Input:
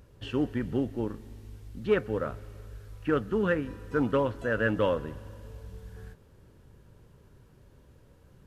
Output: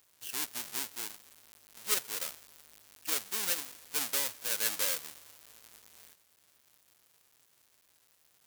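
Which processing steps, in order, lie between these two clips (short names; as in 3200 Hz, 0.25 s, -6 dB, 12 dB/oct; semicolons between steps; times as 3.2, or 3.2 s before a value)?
half-waves squared off; differentiator; gain +1 dB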